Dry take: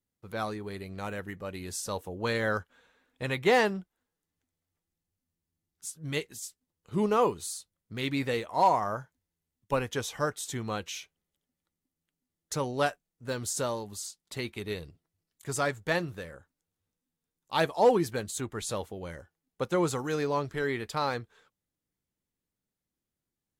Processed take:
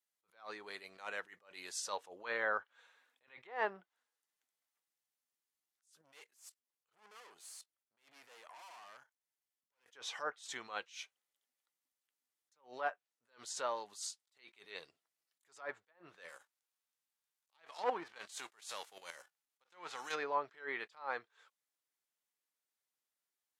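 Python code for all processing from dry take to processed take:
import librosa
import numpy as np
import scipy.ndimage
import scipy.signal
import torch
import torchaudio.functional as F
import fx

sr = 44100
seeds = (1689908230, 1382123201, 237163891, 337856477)

y = fx.chain(x, sr, fx.tube_stage(drive_db=40.0, bias=0.5),
    fx.level_steps(step_db=13),
    fx.notch(hz=3800.0, q=16.0), at=(6.01, 9.86))
y = fx.envelope_flatten(y, sr, power=0.6, at=(16.28, 20.14), fade=0.02)
y = fx.level_steps(y, sr, step_db=10, at=(16.28, 20.14), fade=0.02)
y = fx.env_lowpass_down(y, sr, base_hz=1400.0, full_db=-24.5)
y = scipy.signal.sosfilt(scipy.signal.butter(2, 810.0, 'highpass', fs=sr, output='sos'), y)
y = fx.attack_slew(y, sr, db_per_s=170.0)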